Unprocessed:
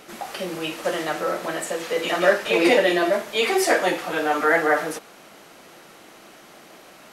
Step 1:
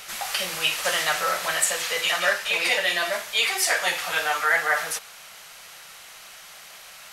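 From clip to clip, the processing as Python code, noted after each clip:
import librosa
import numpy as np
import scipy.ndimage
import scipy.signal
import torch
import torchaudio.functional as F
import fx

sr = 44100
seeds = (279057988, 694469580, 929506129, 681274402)

y = fx.tone_stack(x, sr, knobs='10-0-10')
y = fx.rider(y, sr, range_db=4, speed_s=0.5)
y = F.gain(torch.from_numpy(y), 7.5).numpy()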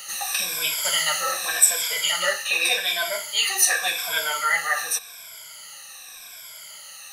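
y = fx.spec_ripple(x, sr, per_octave=1.7, drift_hz=-0.87, depth_db=19)
y = fx.high_shelf(y, sr, hz=3200.0, db=11.0)
y = F.gain(torch.from_numpy(y), -8.0).numpy()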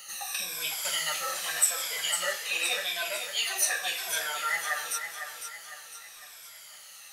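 y = fx.echo_feedback(x, sr, ms=504, feedback_pct=44, wet_db=-8)
y = F.gain(torch.from_numpy(y), -8.0).numpy()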